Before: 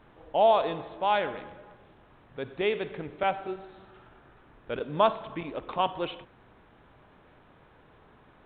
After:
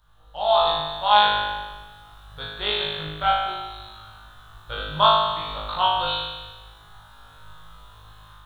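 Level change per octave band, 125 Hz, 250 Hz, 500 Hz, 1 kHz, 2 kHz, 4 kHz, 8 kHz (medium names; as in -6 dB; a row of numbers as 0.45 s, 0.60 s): +6.0 dB, -4.0 dB, +0.5 dB, +8.0 dB, +9.0 dB, +17.0 dB, no reading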